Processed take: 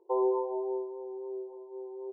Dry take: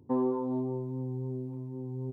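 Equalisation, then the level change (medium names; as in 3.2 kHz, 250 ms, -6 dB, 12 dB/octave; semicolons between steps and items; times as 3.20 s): brick-wall FIR band-pass 340–1100 Hz; +4.0 dB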